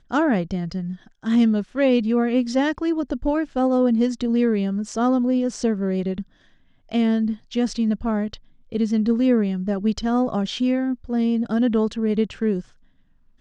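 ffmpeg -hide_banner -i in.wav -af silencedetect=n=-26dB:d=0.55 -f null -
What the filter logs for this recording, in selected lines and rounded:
silence_start: 6.22
silence_end: 6.92 | silence_duration: 0.70
silence_start: 12.60
silence_end: 13.40 | silence_duration: 0.80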